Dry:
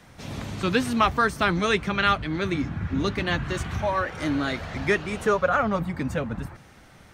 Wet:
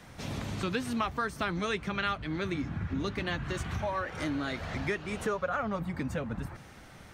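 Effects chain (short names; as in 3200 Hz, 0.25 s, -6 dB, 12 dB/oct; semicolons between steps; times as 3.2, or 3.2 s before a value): compressor 2.5:1, threshold -33 dBFS, peak gain reduction 12 dB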